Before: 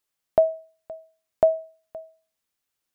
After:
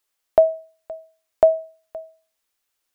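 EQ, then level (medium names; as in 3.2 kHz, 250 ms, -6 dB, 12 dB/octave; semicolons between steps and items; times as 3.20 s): peaking EQ 150 Hz -13.5 dB 1.3 oct; +5.0 dB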